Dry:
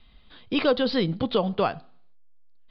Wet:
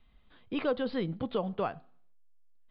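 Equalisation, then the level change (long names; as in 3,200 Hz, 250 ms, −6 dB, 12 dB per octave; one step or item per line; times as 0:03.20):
low-pass filter 2,500 Hz 12 dB per octave
−8.0 dB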